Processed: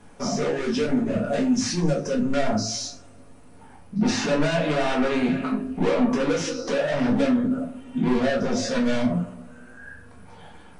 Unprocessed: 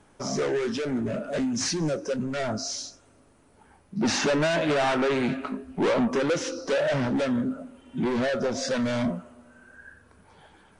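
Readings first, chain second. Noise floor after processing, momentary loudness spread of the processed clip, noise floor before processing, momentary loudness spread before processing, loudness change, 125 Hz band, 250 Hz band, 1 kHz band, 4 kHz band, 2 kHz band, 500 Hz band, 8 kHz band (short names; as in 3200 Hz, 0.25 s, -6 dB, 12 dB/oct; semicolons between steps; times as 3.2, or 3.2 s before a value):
-47 dBFS, 8 LU, -59 dBFS, 9 LU, +2.5 dB, +4.0 dB, +5.0 dB, +1.5 dB, +1.0 dB, +0.5 dB, +1.5 dB, +1.0 dB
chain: limiter -26 dBFS, peak gain reduction 8.5 dB; shoebox room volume 160 m³, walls furnished, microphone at 1.8 m; gain +2.5 dB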